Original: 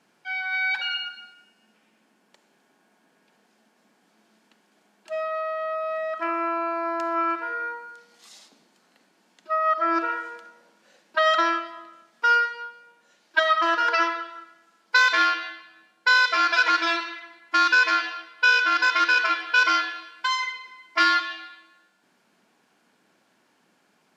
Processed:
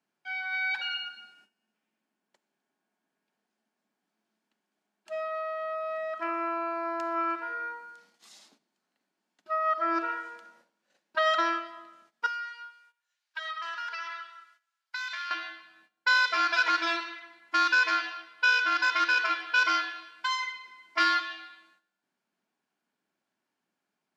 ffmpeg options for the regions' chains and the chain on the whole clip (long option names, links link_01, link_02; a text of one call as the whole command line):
ffmpeg -i in.wav -filter_complex "[0:a]asettb=1/sr,asplit=3[link_01][link_02][link_03];[link_01]atrim=end=12.264[link_04];[link_02]atrim=start=12.26:end=15.31,asetpts=PTS-STARTPTS,afade=type=in:duration=0.004:curve=qsin,afade=type=out:start_time=3.046:duration=0.004:curve=qsin,highpass=1400,acompressor=threshold=-28dB:ratio=5:attack=3.2:release=140:knee=1:detection=peak[link_05];[link_03]atrim=start=15.306[link_06];[link_04][link_05]acrossfade=duration=0.004:curve1=hsin:curve2=qsin[link_07];[link_07][link_06]acrossfade=duration=0.004:curve1=qsin:curve2=hsin,bandreject=frequency=490:width=12,agate=range=-14dB:threshold=-56dB:ratio=16:detection=peak,volume=-5dB" out.wav